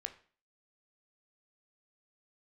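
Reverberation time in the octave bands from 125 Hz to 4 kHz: 0.40, 0.45, 0.40, 0.40, 0.45, 0.40 seconds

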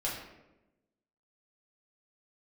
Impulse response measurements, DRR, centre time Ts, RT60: −5.5 dB, 49 ms, 1.0 s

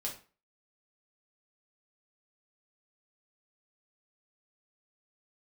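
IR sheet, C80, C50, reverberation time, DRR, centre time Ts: 14.5 dB, 9.0 dB, 0.35 s, −2.0 dB, 20 ms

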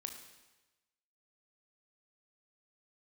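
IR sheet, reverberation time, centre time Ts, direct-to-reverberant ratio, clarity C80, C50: 1.1 s, 25 ms, 4.5 dB, 9.0 dB, 7.5 dB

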